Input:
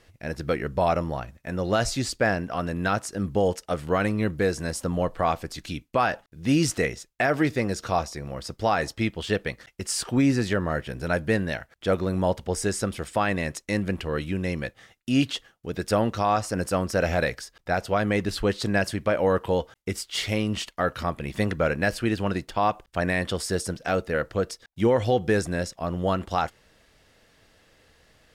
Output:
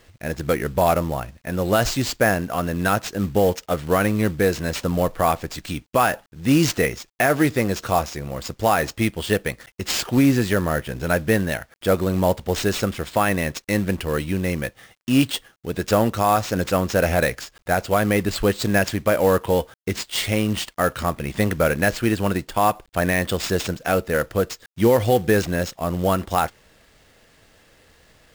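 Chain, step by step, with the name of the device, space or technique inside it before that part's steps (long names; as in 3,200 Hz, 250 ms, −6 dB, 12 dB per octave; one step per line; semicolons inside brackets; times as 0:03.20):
early companding sampler (sample-rate reduction 12,000 Hz, jitter 0%; log-companded quantiser 6 bits)
level +4.5 dB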